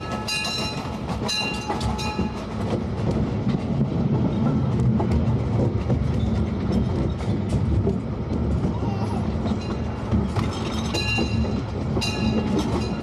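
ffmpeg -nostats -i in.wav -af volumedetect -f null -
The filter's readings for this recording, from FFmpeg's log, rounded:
mean_volume: -23.2 dB
max_volume: -11.4 dB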